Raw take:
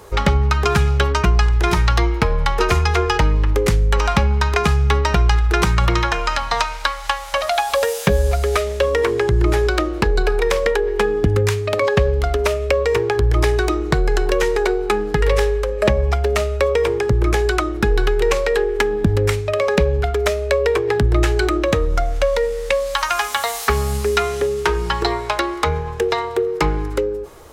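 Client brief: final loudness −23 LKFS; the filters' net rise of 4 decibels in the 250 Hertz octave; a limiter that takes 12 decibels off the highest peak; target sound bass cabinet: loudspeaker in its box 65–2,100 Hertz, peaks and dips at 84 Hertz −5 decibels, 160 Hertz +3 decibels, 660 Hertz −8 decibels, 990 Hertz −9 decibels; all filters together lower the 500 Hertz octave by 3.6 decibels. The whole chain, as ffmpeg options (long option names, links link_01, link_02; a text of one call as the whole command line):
ffmpeg -i in.wav -af "equalizer=frequency=250:width_type=o:gain=8.5,equalizer=frequency=500:width_type=o:gain=-6,alimiter=limit=-11dB:level=0:latency=1,highpass=frequency=65:width=0.5412,highpass=frequency=65:width=1.3066,equalizer=frequency=84:width_type=q:width=4:gain=-5,equalizer=frequency=160:width_type=q:width=4:gain=3,equalizer=frequency=660:width_type=q:width=4:gain=-8,equalizer=frequency=990:width_type=q:width=4:gain=-9,lowpass=frequency=2100:width=0.5412,lowpass=frequency=2100:width=1.3066,volume=1dB" out.wav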